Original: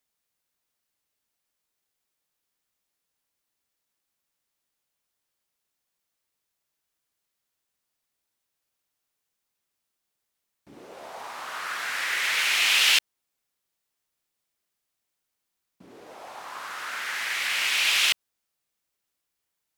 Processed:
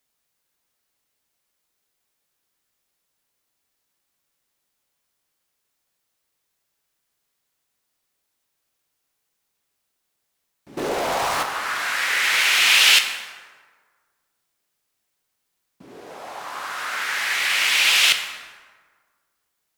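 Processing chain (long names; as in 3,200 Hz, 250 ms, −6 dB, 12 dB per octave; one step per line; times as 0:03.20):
0:10.77–0:11.43: leveller curve on the samples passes 5
dense smooth reverb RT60 1.6 s, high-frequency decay 0.55×, DRR 5 dB
level +5 dB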